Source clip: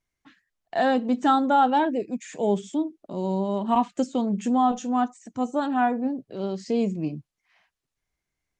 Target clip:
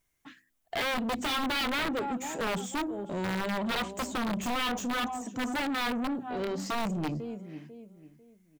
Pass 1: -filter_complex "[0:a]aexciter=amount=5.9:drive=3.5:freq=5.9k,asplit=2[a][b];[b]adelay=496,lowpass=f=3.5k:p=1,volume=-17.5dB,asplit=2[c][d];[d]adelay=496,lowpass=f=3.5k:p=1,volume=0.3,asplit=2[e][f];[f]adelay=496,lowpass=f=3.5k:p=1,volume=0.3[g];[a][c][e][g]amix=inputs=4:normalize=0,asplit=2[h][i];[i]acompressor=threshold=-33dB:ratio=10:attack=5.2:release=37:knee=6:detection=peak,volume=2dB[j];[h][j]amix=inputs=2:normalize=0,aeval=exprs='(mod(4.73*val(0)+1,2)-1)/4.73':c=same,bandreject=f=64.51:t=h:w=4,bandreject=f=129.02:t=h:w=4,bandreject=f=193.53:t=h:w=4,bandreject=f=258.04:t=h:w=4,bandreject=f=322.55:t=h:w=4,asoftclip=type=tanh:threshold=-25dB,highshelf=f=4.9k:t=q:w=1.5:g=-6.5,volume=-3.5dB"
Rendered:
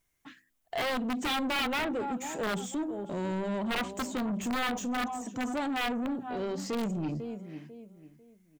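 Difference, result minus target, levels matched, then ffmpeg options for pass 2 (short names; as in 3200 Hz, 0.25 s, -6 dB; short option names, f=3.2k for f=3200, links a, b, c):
compressor: peak gain reduction +8 dB
-filter_complex "[0:a]aexciter=amount=5.9:drive=3.5:freq=5.9k,asplit=2[a][b];[b]adelay=496,lowpass=f=3.5k:p=1,volume=-17.5dB,asplit=2[c][d];[d]adelay=496,lowpass=f=3.5k:p=1,volume=0.3,asplit=2[e][f];[f]adelay=496,lowpass=f=3.5k:p=1,volume=0.3[g];[a][c][e][g]amix=inputs=4:normalize=0,asplit=2[h][i];[i]acompressor=threshold=-24dB:ratio=10:attack=5.2:release=37:knee=6:detection=peak,volume=2dB[j];[h][j]amix=inputs=2:normalize=0,aeval=exprs='(mod(4.73*val(0)+1,2)-1)/4.73':c=same,bandreject=f=64.51:t=h:w=4,bandreject=f=129.02:t=h:w=4,bandreject=f=193.53:t=h:w=4,bandreject=f=258.04:t=h:w=4,bandreject=f=322.55:t=h:w=4,asoftclip=type=tanh:threshold=-25dB,highshelf=f=4.9k:t=q:w=1.5:g=-6.5,volume=-3.5dB"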